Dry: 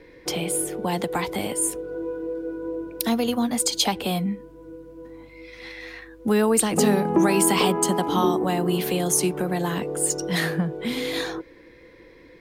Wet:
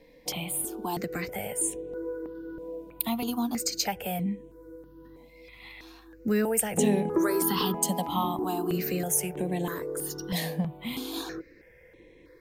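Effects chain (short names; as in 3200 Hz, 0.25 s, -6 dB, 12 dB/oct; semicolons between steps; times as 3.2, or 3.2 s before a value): bell 14000 Hz +11 dB 0.28 oct; step phaser 3.1 Hz 370–4800 Hz; gain -3.5 dB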